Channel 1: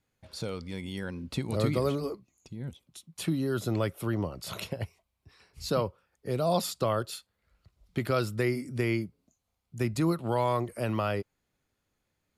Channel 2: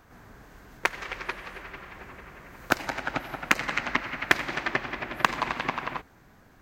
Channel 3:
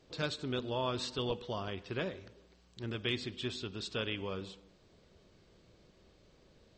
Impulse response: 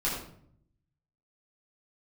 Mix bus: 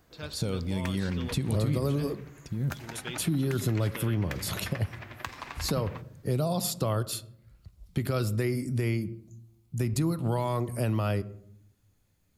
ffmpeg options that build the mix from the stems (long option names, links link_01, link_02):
-filter_complex "[0:a]lowshelf=frequency=260:gain=11.5,volume=0dB,asplit=2[link_01][link_02];[link_02]volume=-23dB[link_03];[1:a]alimiter=limit=-8.5dB:level=0:latency=1:release=263,flanger=delay=2.7:depth=6.3:regen=64:speed=0.3:shape=triangular,volume=-7.5dB[link_04];[2:a]volume=-5.5dB[link_05];[link_01][link_04]amix=inputs=2:normalize=0,highshelf=frequency=5400:gain=10.5,alimiter=limit=-15dB:level=0:latency=1:release=106,volume=0dB[link_06];[3:a]atrim=start_sample=2205[link_07];[link_03][link_07]afir=irnorm=-1:irlink=0[link_08];[link_05][link_06][link_08]amix=inputs=3:normalize=0,acompressor=threshold=-27dB:ratio=2"